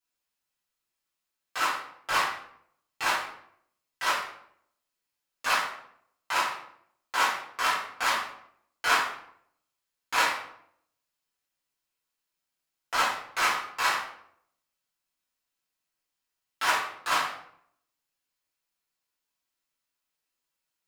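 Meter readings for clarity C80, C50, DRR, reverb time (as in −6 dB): 7.5 dB, 4.0 dB, −11.0 dB, 0.70 s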